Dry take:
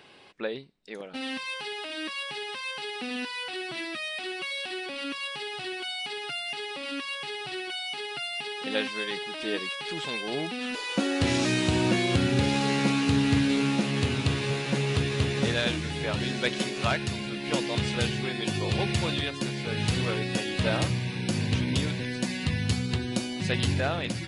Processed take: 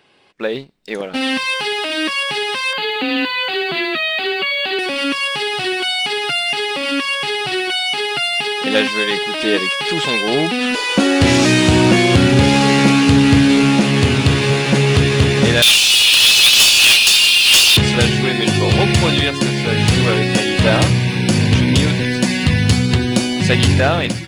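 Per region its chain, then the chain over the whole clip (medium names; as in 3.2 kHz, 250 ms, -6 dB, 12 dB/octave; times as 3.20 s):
2.73–4.79 s: brick-wall FIR low-pass 4.9 kHz + frequency shift +20 Hz
15.62–17.77 s: steep high-pass 2.5 kHz 96 dB/octave + waveshaping leveller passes 5
whole clip: band-stop 3.9 kHz, Q 25; level rider gain up to 11.5 dB; waveshaping leveller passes 1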